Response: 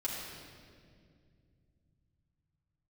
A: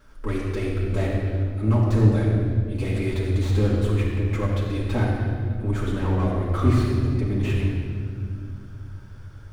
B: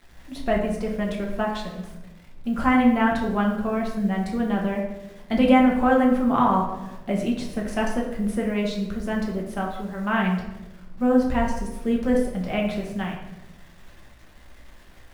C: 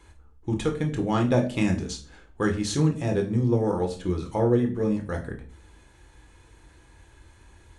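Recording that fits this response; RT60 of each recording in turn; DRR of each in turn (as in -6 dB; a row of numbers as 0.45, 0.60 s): A; 2.2, 1.0, 0.40 s; -7.0, -1.5, 2.5 dB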